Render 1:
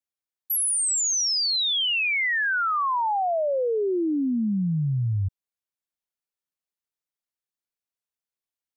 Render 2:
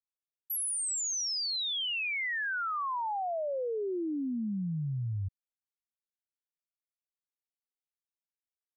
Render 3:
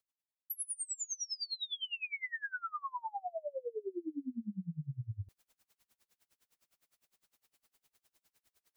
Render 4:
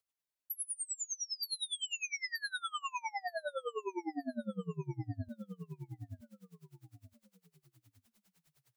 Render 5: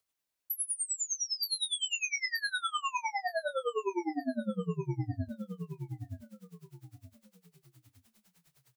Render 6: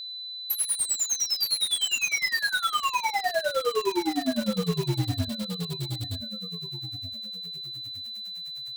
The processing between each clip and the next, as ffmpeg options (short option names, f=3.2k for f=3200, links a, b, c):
-af "anlmdn=0.0251,volume=-9dB"
-af "areverse,acompressor=mode=upward:threshold=-45dB:ratio=2.5,areverse,aeval=exprs='val(0)*pow(10,-29*(0.5-0.5*cos(2*PI*9.8*n/s))/20)':c=same,volume=-1.5dB"
-af "aecho=1:1:924|1848|2772|3696:0.501|0.145|0.0421|0.0122"
-filter_complex "[0:a]asplit=2[a][b];[b]adelay=23,volume=-8.5dB[c];[a][c]amix=inputs=2:normalize=0,volume=5dB"
-filter_complex "[0:a]aeval=exprs='val(0)+0.00562*sin(2*PI*4000*n/s)':c=same,asplit=2[a][b];[b]aeval=exprs='(mod(66.8*val(0)+1,2)-1)/66.8':c=same,volume=-7dB[c];[a][c]amix=inputs=2:normalize=0,volume=7dB"